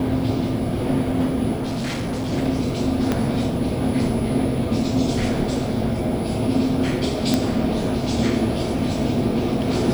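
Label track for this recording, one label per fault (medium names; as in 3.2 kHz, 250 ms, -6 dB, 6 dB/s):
1.550000	2.340000	clipped -22 dBFS
3.120000	3.120000	pop -8 dBFS
7.340000	7.340000	pop -4 dBFS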